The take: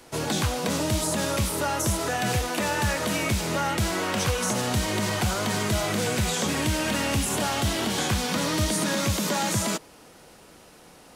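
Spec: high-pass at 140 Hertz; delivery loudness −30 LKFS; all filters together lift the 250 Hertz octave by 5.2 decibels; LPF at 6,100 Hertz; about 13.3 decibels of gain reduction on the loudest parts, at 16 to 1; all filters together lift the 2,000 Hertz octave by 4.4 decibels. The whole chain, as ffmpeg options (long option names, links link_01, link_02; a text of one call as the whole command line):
ffmpeg -i in.wav -af "highpass=140,lowpass=6100,equalizer=frequency=250:width_type=o:gain=7.5,equalizer=frequency=2000:width_type=o:gain=5.5,acompressor=threshold=-32dB:ratio=16,volume=5.5dB" out.wav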